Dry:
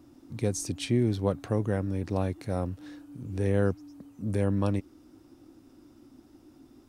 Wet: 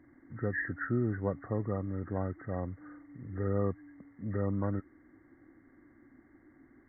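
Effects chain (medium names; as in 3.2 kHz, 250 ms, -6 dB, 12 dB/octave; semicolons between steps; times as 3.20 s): knee-point frequency compression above 1.1 kHz 4:1; trim -5.5 dB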